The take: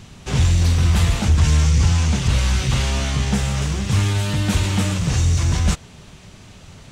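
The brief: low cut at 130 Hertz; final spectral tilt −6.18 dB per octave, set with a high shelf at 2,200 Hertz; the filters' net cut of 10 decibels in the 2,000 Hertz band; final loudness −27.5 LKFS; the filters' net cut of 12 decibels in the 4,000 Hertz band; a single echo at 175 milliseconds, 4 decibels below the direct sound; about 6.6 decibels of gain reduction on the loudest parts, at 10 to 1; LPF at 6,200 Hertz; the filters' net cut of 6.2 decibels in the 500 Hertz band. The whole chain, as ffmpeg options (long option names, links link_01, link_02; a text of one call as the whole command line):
ffmpeg -i in.wav -af "highpass=130,lowpass=6200,equalizer=frequency=500:width_type=o:gain=-7.5,equalizer=frequency=2000:width_type=o:gain=-7.5,highshelf=frequency=2200:gain=-5,equalizer=frequency=4000:width_type=o:gain=-7.5,acompressor=threshold=-25dB:ratio=10,aecho=1:1:175:0.631,volume=1.5dB" out.wav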